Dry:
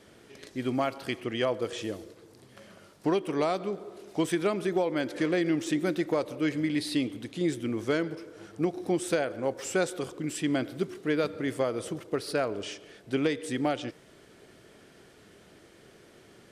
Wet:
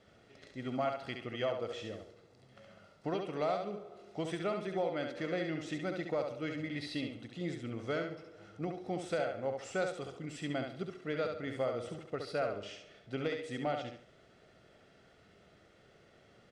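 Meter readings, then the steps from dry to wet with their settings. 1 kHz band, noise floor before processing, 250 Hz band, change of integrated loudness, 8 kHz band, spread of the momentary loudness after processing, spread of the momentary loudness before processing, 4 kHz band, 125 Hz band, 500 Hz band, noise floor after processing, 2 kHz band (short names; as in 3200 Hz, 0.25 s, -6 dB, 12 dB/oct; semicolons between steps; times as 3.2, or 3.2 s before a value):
-5.0 dB, -56 dBFS, -10.5 dB, -7.5 dB, -14.0 dB, 9 LU, 9 LU, -7.5 dB, -6.0 dB, -6.5 dB, -63 dBFS, -6.5 dB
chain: air absorption 94 m; comb 1.5 ms, depth 45%; on a send: thinning echo 69 ms, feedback 30%, high-pass 150 Hz, level -5 dB; on the sum: gain -7.5 dB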